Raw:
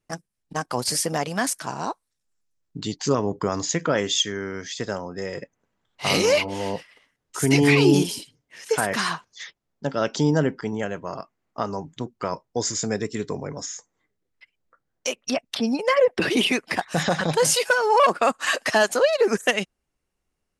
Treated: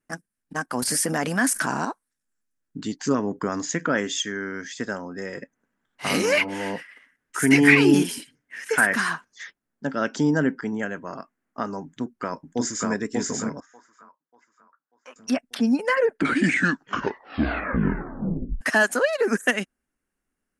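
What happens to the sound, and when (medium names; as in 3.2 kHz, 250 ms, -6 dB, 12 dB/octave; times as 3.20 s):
0.82–1.85 s: level flattener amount 70%
6.32–8.93 s: peaking EQ 2 kHz +7.5 dB 1.3 oct
11.84–12.90 s: echo throw 590 ms, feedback 40%, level -1 dB
13.60–15.16 s: band-pass filter 1.1 kHz, Q 3.4
15.82 s: tape stop 2.79 s
whole clip: fifteen-band graphic EQ 100 Hz -5 dB, 250 Hz +10 dB, 1.6 kHz +10 dB, 4 kHz -4 dB, 10 kHz +7 dB; trim -5 dB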